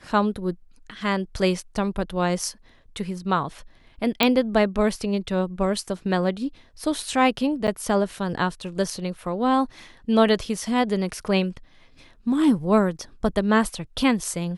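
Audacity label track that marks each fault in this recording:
4.230000	4.230000	pop -3 dBFS
7.670000	7.680000	dropout 9.2 ms

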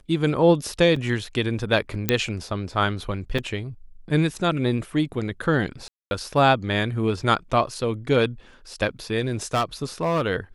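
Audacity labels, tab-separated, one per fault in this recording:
0.960000	0.960000	dropout 3.7 ms
2.090000	2.090000	pop -4 dBFS
3.380000	3.390000	dropout 5.1 ms
5.880000	6.110000	dropout 230 ms
9.190000	10.220000	clipped -17.5 dBFS

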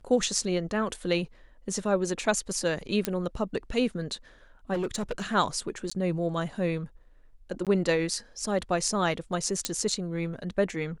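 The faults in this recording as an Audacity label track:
3.050000	3.050000	pop -10 dBFS
4.730000	5.350000	clipped -25.5 dBFS
5.900000	5.920000	dropout 15 ms
7.650000	7.670000	dropout 17 ms
9.650000	9.650000	pop -10 dBFS

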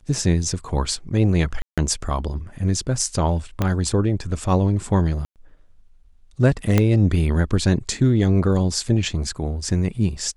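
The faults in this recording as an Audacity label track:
1.620000	1.780000	dropout 156 ms
3.620000	3.620000	pop -8 dBFS
5.250000	5.360000	dropout 108 ms
6.780000	6.780000	pop -4 dBFS

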